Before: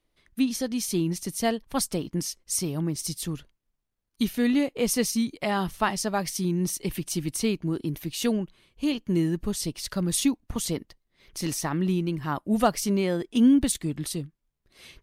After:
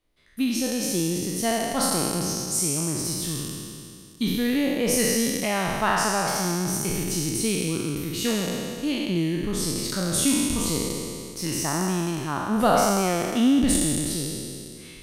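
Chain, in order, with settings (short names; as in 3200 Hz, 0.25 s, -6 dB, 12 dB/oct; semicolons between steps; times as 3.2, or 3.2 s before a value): spectral trails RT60 2.41 s; gain -2 dB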